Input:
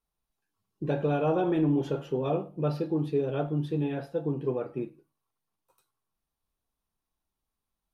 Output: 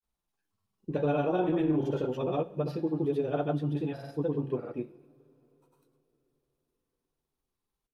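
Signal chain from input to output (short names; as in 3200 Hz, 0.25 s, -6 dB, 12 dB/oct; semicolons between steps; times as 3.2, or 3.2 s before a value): grains, grains 20/s, pitch spread up and down by 0 st; two-slope reverb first 0.57 s, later 4.4 s, from -18 dB, DRR 15 dB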